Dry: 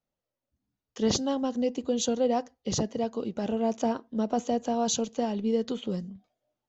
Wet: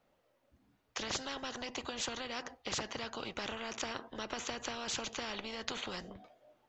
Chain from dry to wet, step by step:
bass and treble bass −8 dB, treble −13 dB
downward compressor 3 to 1, threshold −29 dBFS, peak gain reduction 6 dB
every bin compressed towards the loudest bin 4 to 1
level −2.5 dB

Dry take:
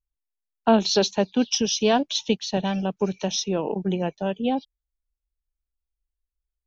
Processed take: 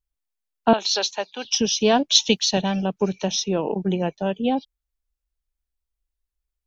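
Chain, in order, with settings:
0:00.73–0:01.45: high-pass filter 770 Hz 12 dB per octave
0:02.11–0:02.61: high-shelf EQ 2,100 Hz → 2,700 Hz +11 dB
level +2 dB

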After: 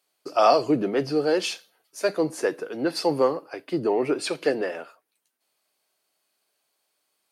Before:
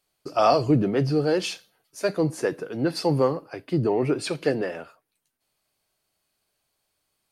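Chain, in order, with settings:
high-pass filter 300 Hz 12 dB per octave
level +1.5 dB

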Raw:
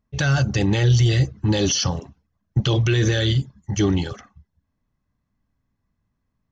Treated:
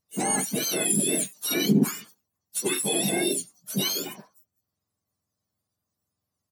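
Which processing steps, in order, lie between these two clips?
frequency axis turned over on the octave scale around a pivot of 1,100 Hz
pitch-shifted copies added −5 semitones −8 dB, +4 semitones −16 dB
level −3.5 dB

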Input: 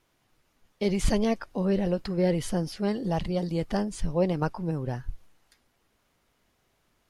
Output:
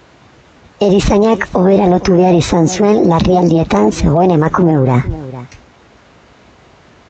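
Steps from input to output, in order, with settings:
high-shelf EQ 2,400 Hz −10.5 dB
in parallel at −1 dB: compressor whose output falls as the input rises −32 dBFS
on the sum: high-pass filter 53 Hz 24 dB per octave
formants moved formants +4 semitones
tape wow and flutter 29 cents
on a send: single-tap delay 453 ms −22 dB
on the sum: downsampling to 16,000 Hz
boost into a limiter +22 dB
level −1 dB

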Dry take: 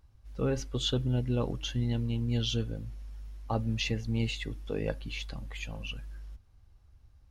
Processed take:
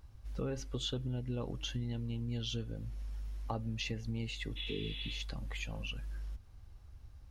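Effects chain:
healed spectral selection 0:04.59–0:05.17, 460–4,100 Hz after
downward compressor 3 to 1, threshold −44 dBFS, peak gain reduction 14.5 dB
level +5 dB

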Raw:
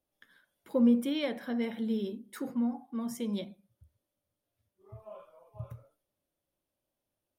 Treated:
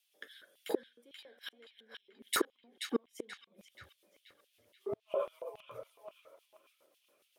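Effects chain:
0:03.19–0:05.02: low-shelf EQ 180 Hz +11.5 dB
in parallel at −2 dB: brickwall limiter −27 dBFS, peak gain reduction 11 dB
on the sum: rotating-speaker cabinet horn 0.7 Hz, later 7.5 Hz, at 0:02.51
gate with flip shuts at −27 dBFS, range −41 dB
on a send: feedback echo with a band-pass in the loop 481 ms, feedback 51%, band-pass 2,500 Hz, level −5 dB
on the sum: auto-filter high-pass square 3.6 Hz 440–2,900 Hz
level +10 dB

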